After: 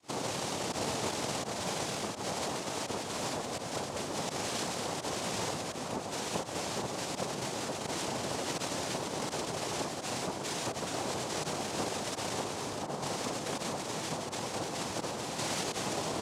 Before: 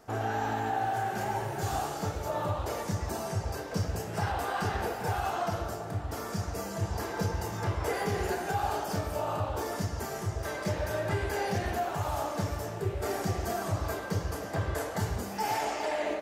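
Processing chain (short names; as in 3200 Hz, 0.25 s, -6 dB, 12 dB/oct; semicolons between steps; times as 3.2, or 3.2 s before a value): pump 84 bpm, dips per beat 1, -23 dB, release 77 ms; limiter -27.5 dBFS, peak gain reduction 8.5 dB; high shelf 3600 Hz +10 dB; noise vocoder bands 2; dark delay 0.583 s, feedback 80%, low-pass 1400 Hz, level -13 dB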